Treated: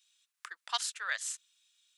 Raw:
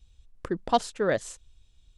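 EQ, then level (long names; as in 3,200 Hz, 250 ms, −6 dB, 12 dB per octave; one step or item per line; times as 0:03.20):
high-pass filter 1,300 Hz 24 dB per octave
high-shelf EQ 5,200 Hz +6.5 dB
0.0 dB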